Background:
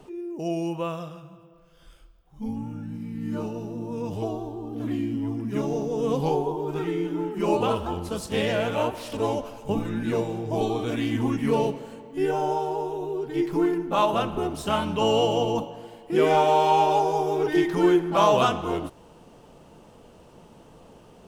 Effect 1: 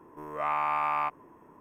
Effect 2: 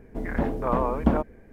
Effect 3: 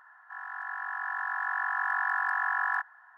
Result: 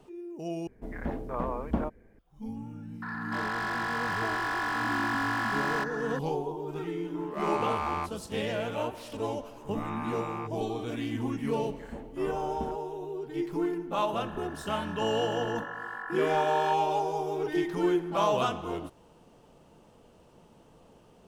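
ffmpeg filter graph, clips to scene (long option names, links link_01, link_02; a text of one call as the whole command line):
ffmpeg -i bed.wav -i cue0.wav -i cue1.wav -i cue2.wav -filter_complex "[2:a]asplit=2[link_01][link_02];[3:a]asplit=2[link_03][link_04];[1:a]asplit=2[link_05][link_06];[0:a]volume=-7dB[link_07];[link_03]asplit=2[link_08][link_09];[link_09]highpass=frequency=720:poles=1,volume=32dB,asoftclip=type=tanh:threshold=-20.5dB[link_10];[link_08][link_10]amix=inputs=2:normalize=0,lowpass=frequency=2400:poles=1,volume=-6dB[link_11];[link_05]adynamicsmooth=sensitivity=6.5:basefreq=1600[link_12];[link_07]asplit=2[link_13][link_14];[link_13]atrim=end=0.674[link_15];[link_01]atrim=end=1.52,asetpts=PTS-STARTPTS,volume=-8dB[link_16];[link_14]atrim=start=2.186[link_17];[link_11]atrim=end=3.17,asetpts=PTS-STARTPTS,volume=-4.5dB,afade=type=in:duration=0.004:curve=hsin,afade=type=out:start_time=3.166:duration=0.004:curve=hsin,adelay=3020[link_18];[link_12]atrim=end=1.6,asetpts=PTS-STARTPTS,volume=-4dB,afade=type=in:duration=0.004:curve=hsin,afade=type=out:start_time=1.596:duration=0.004:curve=hsin,adelay=6970[link_19];[link_06]atrim=end=1.6,asetpts=PTS-STARTPTS,volume=-10dB,afade=type=in:duration=0.004:curve=hsin,afade=type=out:start_time=1.596:duration=0.004:curve=hsin,adelay=413658S[link_20];[link_02]atrim=end=1.52,asetpts=PTS-STARTPTS,volume=-17dB,afade=type=in:duration=0.004:curve=hsin,afade=type=out:start_time=1.516:duration=0.004:curve=hsin,adelay=508914S[link_21];[link_04]atrim=end=3.17,asetpts=PTS-STARTPTS,volume=-10dB,afade=type=in:duration=0.004:curve=hsin,afade=type=out:start_time=3.166:duration=0.004:curve=hsin,adelay=13920[link_22];[link_15][link_16]acrossfade=duration=0.004:curve1=hsin:curve2=hsin[link_23];[link_23][link_17]acrossfade=duration=0.004:curve1=hsin:curve2=hsin[link_24];[link_24][link_18][link_19][link_20][link_21][link_22]amix=inputs=6:normalize=0" out.wav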